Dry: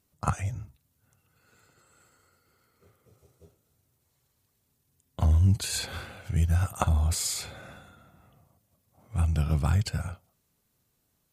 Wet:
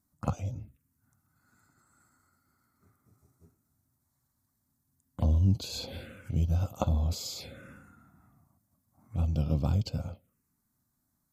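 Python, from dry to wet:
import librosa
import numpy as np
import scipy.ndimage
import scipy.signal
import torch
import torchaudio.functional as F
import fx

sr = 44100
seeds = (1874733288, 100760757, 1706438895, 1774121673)

y = fx.small_body(x, sr, hz=(260.0, 520.0), ring_ms=25, db=9)
y = fx.env_phaser(y, sr, low_hz=480.0, high_hz=1800.0, full_db=-27.5)
y = y * librosa.db_to_amplitude(-4.0)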